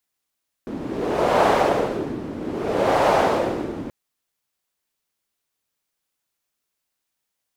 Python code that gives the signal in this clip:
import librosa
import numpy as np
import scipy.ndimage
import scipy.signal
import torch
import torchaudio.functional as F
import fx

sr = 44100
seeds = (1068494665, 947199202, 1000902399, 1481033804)

y = fx.wind(sr, seeds[0], length_s=3.23, low_hz=280.0, high_hz=690.0, q=1.9, gusts=2, swing_db=14.0)